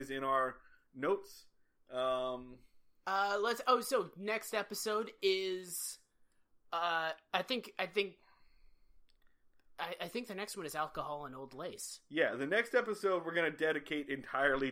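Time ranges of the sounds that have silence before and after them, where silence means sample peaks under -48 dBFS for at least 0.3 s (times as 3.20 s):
0.97–1.39 s
1.91–2.54 s
3.07–5.95 s
6.73–8.10 s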